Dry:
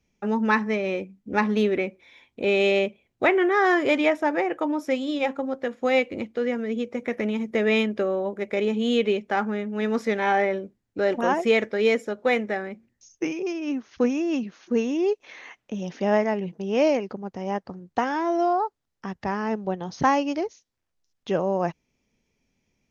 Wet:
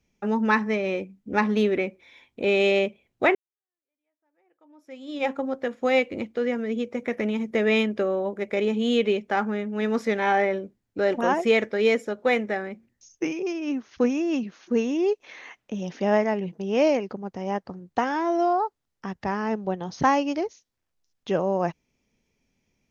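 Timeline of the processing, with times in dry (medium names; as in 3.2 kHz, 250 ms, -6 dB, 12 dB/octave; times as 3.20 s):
3.35–5.26 s: fade in exponential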